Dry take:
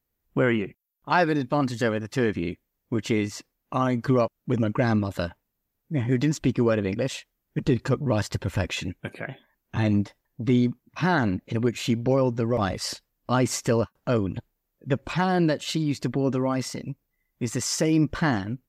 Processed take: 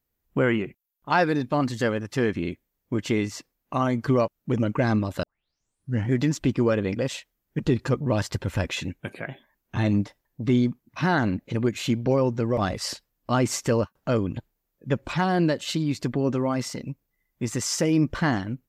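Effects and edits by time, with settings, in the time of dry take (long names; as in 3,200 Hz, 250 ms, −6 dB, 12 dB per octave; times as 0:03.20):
0:05.23: tape start 0.87 s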